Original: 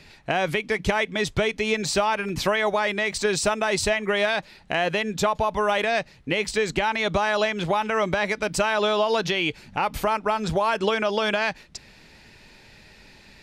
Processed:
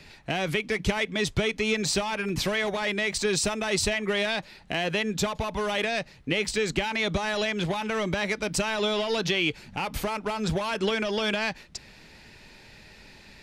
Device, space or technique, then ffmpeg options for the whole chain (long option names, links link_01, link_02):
one-band saturation: -filter_complex "[0:a]acrossover=split=400|2000[link_01][link_02][link_03];[link_02]asoftclip=type=tanh:threshold=-31.5dB[link_04];[link_01][link_04][link_03]amix=inputs=3:normalize=0"